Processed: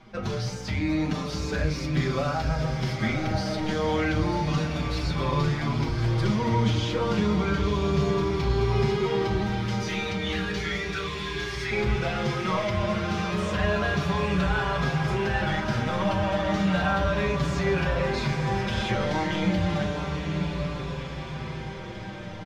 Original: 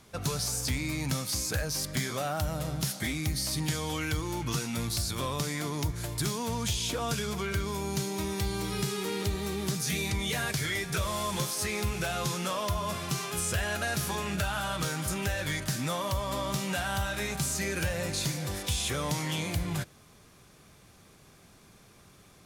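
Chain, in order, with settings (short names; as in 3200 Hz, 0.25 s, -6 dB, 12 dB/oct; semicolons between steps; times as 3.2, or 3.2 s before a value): 9.46–11.71 HPF 1400 Hz 24 dB/oct; soft clip -24.5 dBFS, distortion -18 dB; air absorption 230 m; diffused feedback echo 0.964 s, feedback 67%, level -6 dB; reverb RT60 0.40 s, pre-delay 5 ms, DRR 2.5 dB; endless flanger 5.8 ms -0.32 Hz; gain +8 dB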